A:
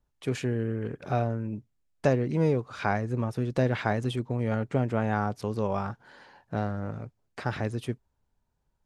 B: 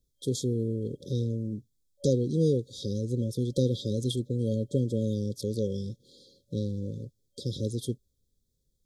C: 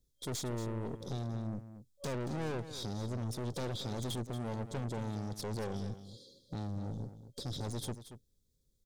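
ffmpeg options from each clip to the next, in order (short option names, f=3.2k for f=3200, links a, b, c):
-af "afftfilt=real='re*(1-between(b*sr/4096,570,3200))':imag='im*(1-between(b*sr/4096,570,3200))':win_size=4096:overlap=0.75,highshelf=f=2.6k:g=9"
-af "aeval=exprs='(tanh(70.8*val(0)+0.5)-tanh(0.5))/70.8':c=same,aecho=1:1:230:0.251,volume=1.5dB"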